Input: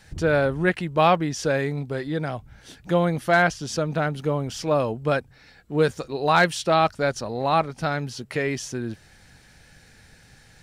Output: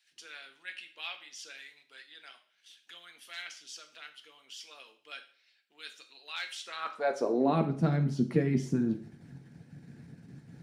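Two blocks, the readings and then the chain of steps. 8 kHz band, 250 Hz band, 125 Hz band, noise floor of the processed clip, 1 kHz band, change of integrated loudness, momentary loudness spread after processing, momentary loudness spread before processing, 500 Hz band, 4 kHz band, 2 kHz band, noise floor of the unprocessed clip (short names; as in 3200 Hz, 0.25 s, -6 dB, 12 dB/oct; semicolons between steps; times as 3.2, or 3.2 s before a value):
-13.5 dB, -6.0 dB, -7.5 dB, -71 dBFS, -16.5 dB, -8.5 dB, 23 LU, 10 LU, -13.0 dB, -9.5 dB, -16.5 dB, -53 dBFS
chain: EQ curve 110 Hz 0 dB, 320 Hz +5 dB, 510 Hz -6 dB, 3900 Hz -17 dB; harmonic-percussive split harmonic -13 dB; dynamic EQ 900 Hz, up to -4 dB, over -42 dBFS, Q 1.6; in parallel at +0.5 dB: level quantiser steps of 20 dB; on the sum: high-pass sweep 3000 Hz -> 140 Hz, 6.54–7.65; two-slope reverb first 0.46 s, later 1.5 s, from -28 dB, DRR 5 dB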